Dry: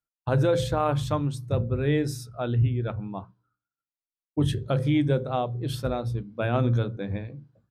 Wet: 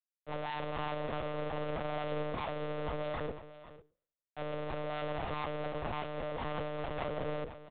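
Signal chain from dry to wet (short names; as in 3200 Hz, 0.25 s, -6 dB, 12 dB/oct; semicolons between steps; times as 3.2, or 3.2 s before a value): rattling part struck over -33 dBFS, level -23 dBFS; LPF 1200 Hz 12 dB/oct; bell 67 Hz +5 dB 0.23 oct; limiter -24.5 dBFS, peak gain reduction 10 dB; Schmitt trigger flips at -48.5 dBFS; echo 0.496 s -8.5 dB; on a send at -23 dB: reverb RT60 1.1 s, pre-delay 3 ms; on the sum: frequency shift +370 Hz; monotone LPC vocoder at 8 kHz 150 Hz; three-band expander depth 70%; gain -4 dB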